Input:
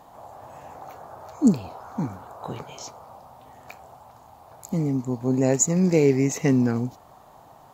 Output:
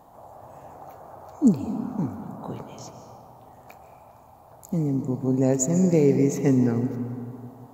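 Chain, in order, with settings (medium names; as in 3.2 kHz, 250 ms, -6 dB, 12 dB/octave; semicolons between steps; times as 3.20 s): peaking EQ 3.1 kHz -8.5 dB 2.9 oct; on a send: reverberation RT60 2.4 s, pre-delay 100 ms, DRR 8.5 dB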